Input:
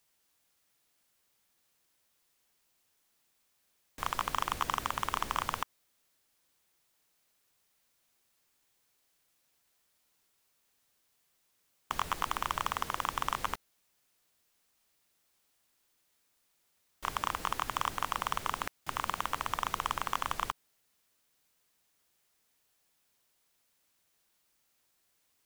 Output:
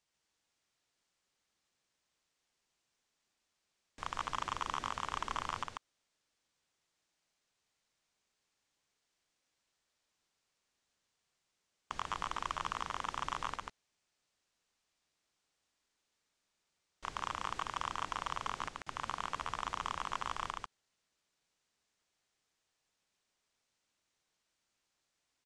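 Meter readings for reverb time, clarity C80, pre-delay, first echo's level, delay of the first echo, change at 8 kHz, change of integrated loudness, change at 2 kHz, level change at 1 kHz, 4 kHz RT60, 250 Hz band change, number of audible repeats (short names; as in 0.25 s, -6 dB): none, none, none, -3.0 dB, 0.142 s, -7.0 dB, -5.0 dB, -5.0 dB, -4.5 dB, none, -5.0 dB, 1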